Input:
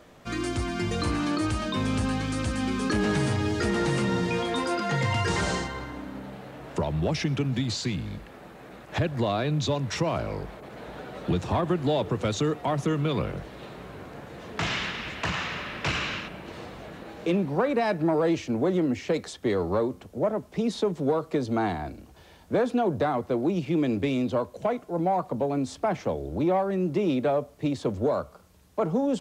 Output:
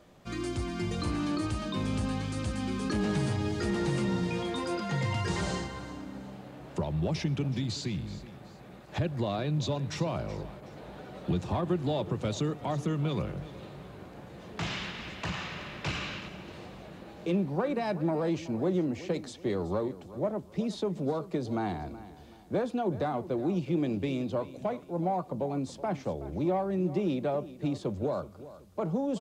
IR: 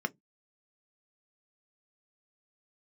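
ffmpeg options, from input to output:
-filter_complex "[0:a]aecho=1:1:375|750|1125:0.158|0.0555|0.0194,asplit=2[a][b];[1:a]atrim=start_sample=2205[c];[b][c]afir=irnorm=-1:irlink=0,volume=-15dB[d];[a][d]amix=inputs=2:normalize=0,volume=-5dB"

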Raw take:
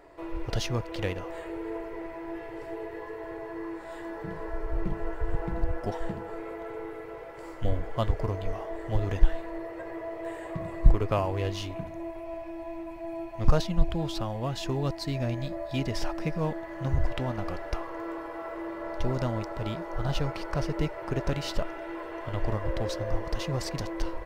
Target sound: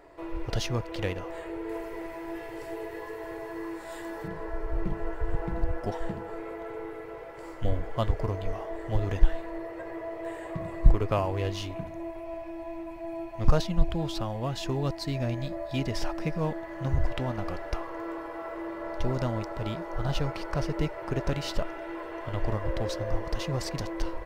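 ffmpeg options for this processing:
-filter_complex "[0:a]asettb=1/sr,asplit=3[a][b][c];[a]atrim=end=1.694[d];[b]atrim=start=1.69:end=4.28,asetpts=PTS-STARTPTS,afade=t=in:d=0.004:c=qsin,afade=t=out:st=2.586:d=0.004:c=qsin,highshelf=f=4.2k:g=12[e];[c]atrim=start=4.276[f];[d][e]acrossfade=d=0.004:c1=hsin:c2=qsin[g];[g][f]acrossfade=d=0.004:c1=qsin:c2=hsin"

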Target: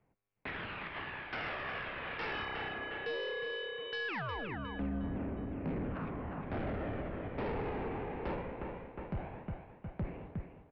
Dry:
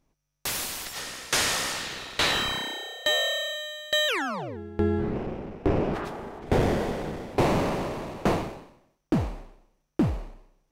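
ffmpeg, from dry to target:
-filter_complex "[0:a]highpass=f=190:t=q:w=0.5412,highpass=f=190:t=q:w=1.307,lowpass=f=2.8k:t=q:w=0.5176,lowpass=f=2.8k:t=q:w=0.7071,lowpass=f=2.8k:t=q:w=1.932,afreqshift=-140,aphaser=in_gain=1:out_gain=1:delay=2.6:decay=0.35:speed=0.19:type=triangular,asplit=2[a][b];[b]aecho=0:1:360|720|1080|1440:0.316|0.126|0.0506|0.0202[c];[a][c]amix=inputs=2:normalize=0,aeval=exprs='0.316*(cos(1*acos(clip(val(0)/0.316,-1,1)))-cos(1*PI/2))+0.0631*(cos(4*acos(clip(val(0)/0.316,-1,1)))-cos(4*PI/2))+0.02*(cos(6*acos(clip(val(0)/0.316,-1,1)))-cos(6*PI/2))':c=same,aresample=11025,asoftclip=type=tanh:threshold=-22dB,aresample=44100,alimiter=level_in=5.5dB:limit=-24dB:level=0:latency=1:release=228,volume=-5.5dB,volume=-2dB"

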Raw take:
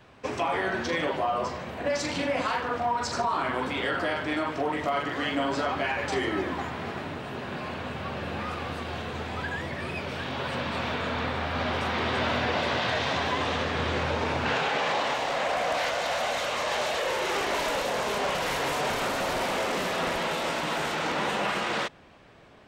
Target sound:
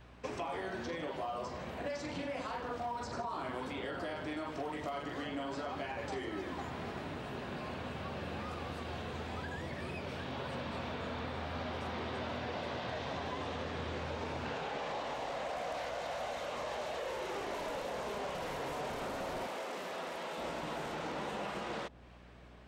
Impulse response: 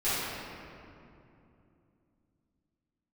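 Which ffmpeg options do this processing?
-filter_complex "[0:a]aeval=exprs='val(0)+0.00251*(sin(2*PI*60*n/s)+sin(2*PI*2*60*n/s)/2+sin(2*PI*3*60*n/s)/3+sin(2*PI*4*60*n/s)/4+sin(2*PI*5*60*n/s)/5)':c=same,acrossover=split=970|3400[a][b][c];[a]acompressor=threshold=-33dB:ratio=4[d];[b]acompressor=threshold=-44dB:ratio=4[e];[c]acompressor=threshold=-50dB:ratio=4[f];[d][e][f]amix=inputs=3:normalize=0,asettb=1/sr,asplit=3[g][h][i];[g]atrim=end=19.474[j];[h]atrim=start=19.47:end=20.38,asetpts=PTS-STARTPTS,afade=t=in:d=0.004:c=qsin,afade=t=out:st=0.906:d=0.004:c=qsin,highpass=f=430:p=1[k];[i]atrim=start=20.376[l];[j][k]acrossfade=d=0.004:c1=hsin:c2=qsin[m];[m][l]acrossfade=d=0.004:c1=qsin:c2=hsin,volume=-5dB"

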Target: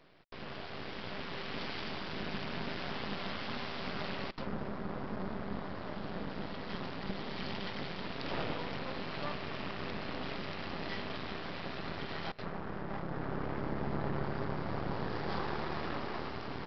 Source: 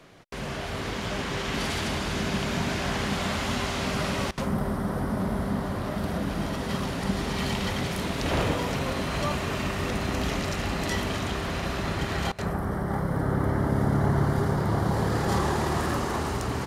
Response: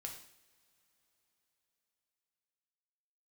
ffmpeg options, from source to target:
-af "highpass=130,aresample=11025,aeval=exprs='max(val(0),0)':c=same,aresample=44100,volume=-6dB"

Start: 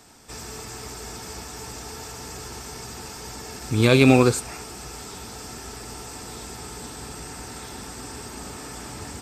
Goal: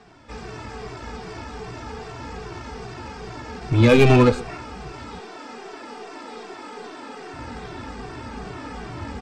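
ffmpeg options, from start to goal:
-filter_complex "[0:a]lowpass=3.7k,aemphasis=mode=reproduction:type=cd,aecho=1:1:127:0.0841,acontrast=66,asettb=1/sr,asplit=3[a][b][c];[a]atrim=end=5.194[d];[b]atrim=start=5.19:end=7.33,asetpts=PTS-STARTPTS,afade=t=in:d=0.004:c=qsin,afade=t=out:st=2.136:d=0.004:c=qsin,highpass=f=260:w=0.5412,highpass=f=260:w=1.3066[e];[c]atrim=start=7.326[f];[d][e]acrossfade=d=0.004:c1=hsin:c2=qsin[g];[g][f]acrossfade=d=0.004:c1=qsin:c2=hsin,aeval=exprs='0.891*(cos(1*acos(clip(val(0)/0.891,-1,1)))-cos(1*PI/2))+0.0708*(cos(8*acos(clip(val(0)/0.891,-1,1)))-cos(8*PI/2))':c=same,asplit=2[h][i];[i]adelay=2.1,afreqshift=-2.5[j];[h][j]amix=inputs=2:normalize=1"

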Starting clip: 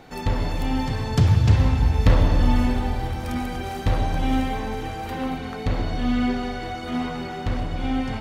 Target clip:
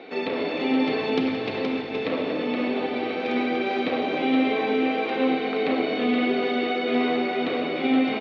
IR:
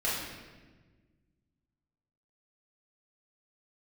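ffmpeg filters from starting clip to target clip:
-filter_complex "[0:a]aemphasis=mode=reproduction:type=75kf,alimiter=limit=-16.5dB:level=0:latency=1:release=132,highpass=f=260:w=0.5412,highpass=f=260:w=1.3066,equalizer=f=290:t=q:w=4:g=3,equalizer=f=420:t=q:w=4:g=6,equalizer=f=900:t=q:w=4:g=-8,equalizer=f=1.5k:t=q:w=4:g=-5,equalizer=f=2.4k:t=q:w=4:g=9,equalizer=f=3.8k:t=q:w=4:g=7,lowpass=f=4.6k:w=0.5412,lowpass=f=4.6k:w=1.3066,aecho=1:1:472:0.531,asplit=2[a][b];[1:a]atrim=start_sample=2205[c];[b][c]afir=irnorm=-1:irlink=0,volume=-17dB[d];[a][d]amix=inputs=2:normalize=0,volume=5dB"

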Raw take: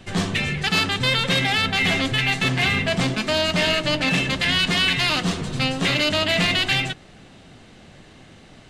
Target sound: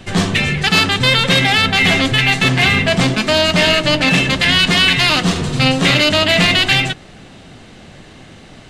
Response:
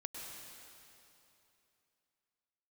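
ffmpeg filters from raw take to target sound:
-filter_complex "[0:a]asettb=1/sr,asplit=3[a][b][c];[a]atrim=end=5.314[d];[b]atrim=start=5.31:end=6,asetpts=PTS-STARTPTS,afade=t=in:d=0.004:c=qsin,afade=t=out:st=0.686:d=0.004:c=qsin,asplit=2[e][f];[f]adelay=46,volume=-7.5dB[g];[e][g]amix=inputs=2:normalize=0,atrim=end_sample=30429[h];[c]atrim=start=5.996[i];[d][h]acrossfade=d=0.004:c1=hsin:c2=qsin[j];[j][i]acrossfade=d=0.004:c1=qsin:c2=hsin,volume=7.5dB"

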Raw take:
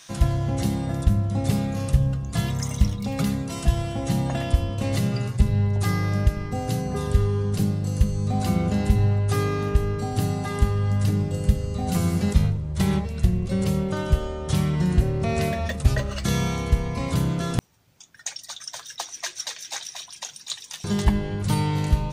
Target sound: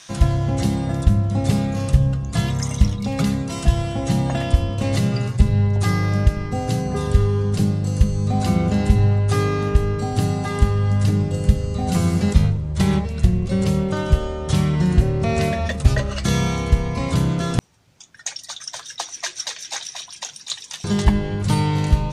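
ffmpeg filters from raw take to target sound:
-af "lowpass=9.8k,volume=4dB"

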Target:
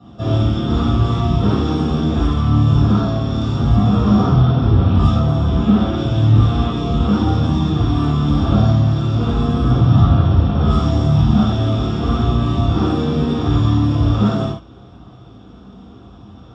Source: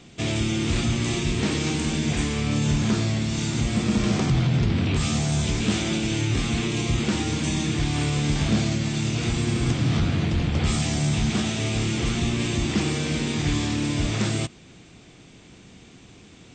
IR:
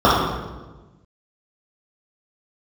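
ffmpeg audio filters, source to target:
-filter_complex "[0:a]flanger=delay=1:depth=3.8:regen=-42:speed=0.8:shape=sinusoidal,asettb=1/sr,asplit=3[a][b][c];[a]atrim=end=5.104[d];[b]atrim=start=5.1:end=5.94,asetpts=PTS-STARTPTS,afade=t=in:d=0.004:c=qsin,afade=t=out:st=0.836:d=0.004:c=qsin,acrossover=split=3600[e][f];[f]acompressor=threshold=-44dB:ratio=4:attack=1:release=60[g];[e][g]amix=inputs=2:normalize=0[h];[c]atrim=start=5.936[i];[d][h]acrossfade=d=0.004:c1=hsin:c2=qsin[j];[j][i]acrossfade=d=0.004:c1=qsin:c2=hsin[k];[1:a]atrim=start_sample=2205,atrim=end_sample=6174[l];[k][l]afir=irnorm=-1:irlink=0,volume=-17.5dB"

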